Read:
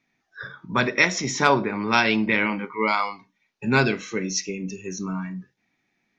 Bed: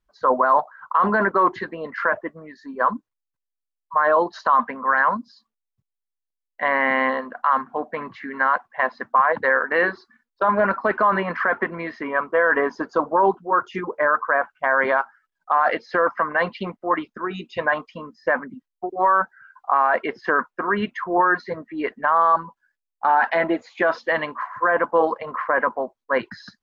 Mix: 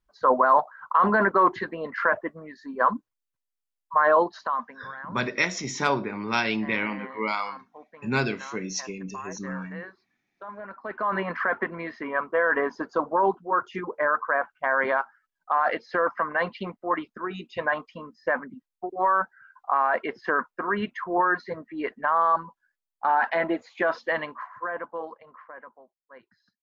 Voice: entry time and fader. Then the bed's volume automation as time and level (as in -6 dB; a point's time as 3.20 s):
4.40 s, -5.5 dB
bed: 4.21 s -1.5 dB
4.93 s -21 dB
10.66 s -21 dB
11.20 s -4.5 dB
24.11 s -4.5 dB
25.88 s -28 dB